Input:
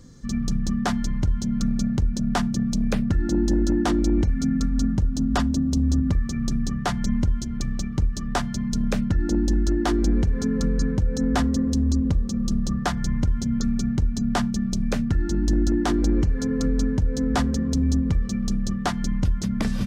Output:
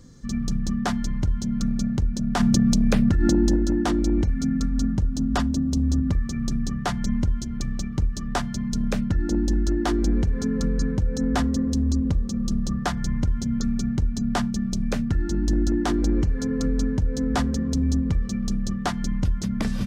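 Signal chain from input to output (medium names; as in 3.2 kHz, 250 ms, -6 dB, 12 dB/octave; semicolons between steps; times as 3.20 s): 2.40–3.56 s: level flattener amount 100%; trim -1 dB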